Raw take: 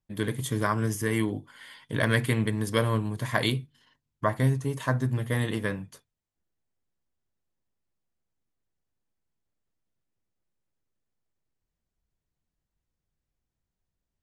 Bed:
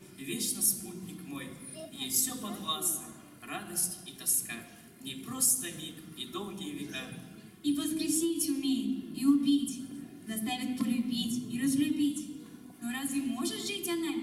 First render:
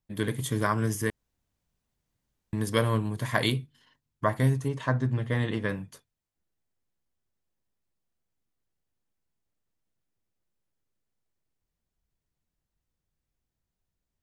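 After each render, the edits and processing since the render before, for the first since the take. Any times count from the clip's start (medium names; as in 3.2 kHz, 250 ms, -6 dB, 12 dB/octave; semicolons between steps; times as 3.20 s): 1.10–2.53 s: room tone; 4.68–5.69 s: distance through air 92 m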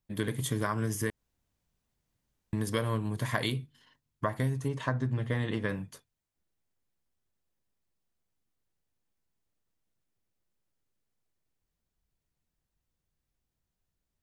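compression, threshold -26 dBFS, peak gain reduction 7.5 dB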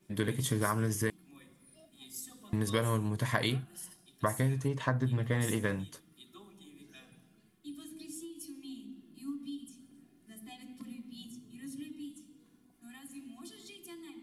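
add bed -15.5 dB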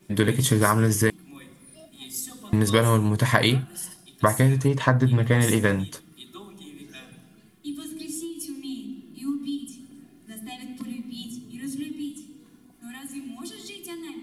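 trim +11 dB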